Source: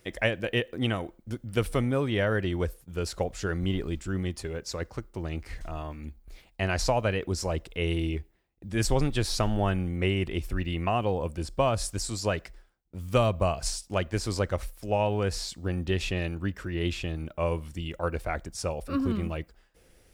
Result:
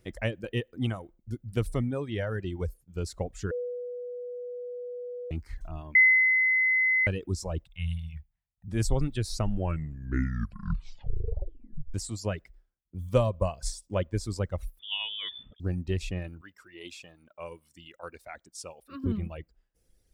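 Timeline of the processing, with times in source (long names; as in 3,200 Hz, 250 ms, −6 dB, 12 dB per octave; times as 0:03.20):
0:03.51–0:05.31: beep over 490 Hz −23.5 dBFS
0:05.95–0:07.07: beep over 2,040 Hz −6.5 dBFS
0:07.65–0:08.68: Chebyshev band-stop filter 150–850 Hz
0:09.40: tape stop 2.54 s
0:13.02–0:14.24: hollow resonant body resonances 540/1,000/3,400 Hz, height 9 dB, ringing for 35 ms
0:14.79–0:15.60: voice inversion scrambler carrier 3,500 Hz
0:16.41–0:19.04: high-pass filter 1,100 Hz 6 dB per octave
whole clip: low-shelf EQ 350 Hz +10.5 dB; reverb reduction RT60 1.7 s; dynamic equaliser 8,000 Hz, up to +5 dB, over −52 dBFS, Q 1.2; level −8 dB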